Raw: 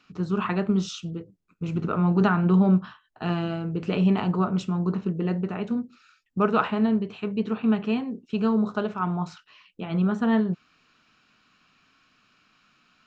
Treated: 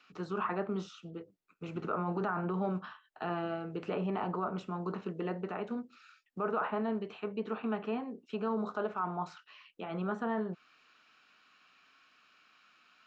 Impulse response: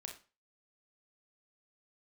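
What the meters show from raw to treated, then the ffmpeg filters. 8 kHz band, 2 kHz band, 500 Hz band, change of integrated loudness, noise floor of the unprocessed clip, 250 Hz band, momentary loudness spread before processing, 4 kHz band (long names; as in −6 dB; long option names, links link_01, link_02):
can't be measured, −8.0 dB, −7.0 dB, −11.0 dB, −67 dBFS, −14.0 dB, 11 LU, −12.5 dB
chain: -filter_complex "[0:a]acrossover=split=140|1600[link_01][link_02][link_03];[link_03]acompressor=threshold=-52dB:ratio=6[link_04];[link_01][link_02][link_04]amix=inputs=3:normalize=0,lowshelf=frequency=340:gain=-10.5,bandreject=frequency=1000:width=25,alimiter=limit=-23dB:level=0:latency=1:release=14,bass=frequency=250:gain=-8,treble=frequency=4000:gain=-5"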